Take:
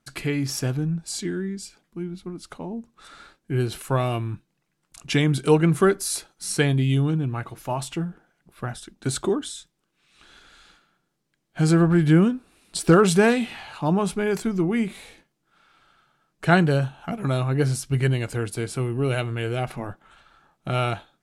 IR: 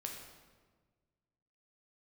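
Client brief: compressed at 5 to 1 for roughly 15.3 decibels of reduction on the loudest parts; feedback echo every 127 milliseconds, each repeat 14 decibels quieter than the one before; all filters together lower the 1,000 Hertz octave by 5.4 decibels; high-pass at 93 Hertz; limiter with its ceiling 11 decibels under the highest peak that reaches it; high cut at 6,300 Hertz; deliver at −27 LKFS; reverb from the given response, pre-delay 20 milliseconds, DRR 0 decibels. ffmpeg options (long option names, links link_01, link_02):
-filter_complex "[0:a]highpass=93,lowpass=6300,equalizer=frequency=1000:width_type=o:gain=-8,acompressor=threshold=-30dB:ratio=5,alimiter=level_in=5.5dB:limit=-24dB:level=0:latency=1,volume=-5.5dB,aecho=1:1:127|254:0.2|0.0399,asplit=2[link_01][link_02];[1:a]atrim=start_sample=2205,adelay=20[link_03];[link_02][link_03]afir=irnorm=-1:irlink=0,volume=1.5dB[link_04];[link_01][link_04]amix=inputs=2:normalize=0,volume=9dB"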